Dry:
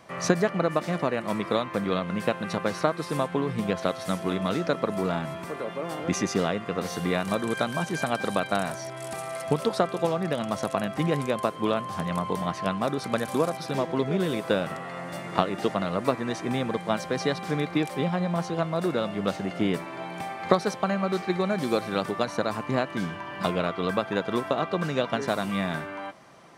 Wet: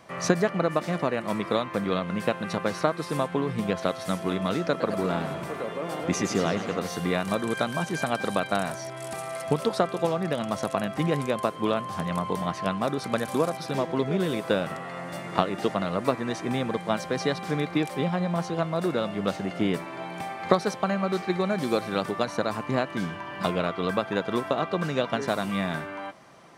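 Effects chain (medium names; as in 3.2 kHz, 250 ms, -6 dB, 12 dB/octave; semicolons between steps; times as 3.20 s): 4.68–6.79 s: modulated delay 106 ms, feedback 67%, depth 210 cents, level -10 dB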